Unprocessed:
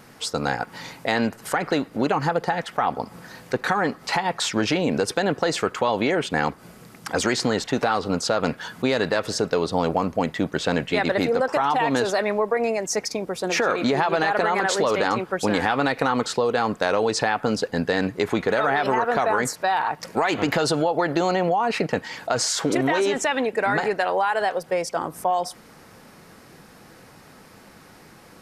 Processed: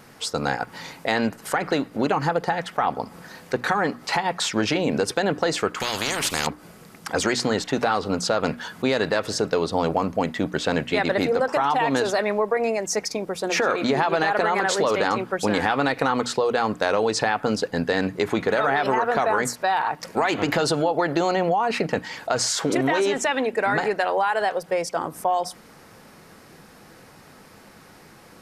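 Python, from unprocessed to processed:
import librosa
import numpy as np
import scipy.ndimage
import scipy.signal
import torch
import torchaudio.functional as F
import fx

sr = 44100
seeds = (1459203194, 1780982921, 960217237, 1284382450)

y = fx.hum_notches(x, sr, base_hz=60, count=5)
y = fx.spectral_comp(y, sr, ratio=4.0, at=(5.8, 6.47))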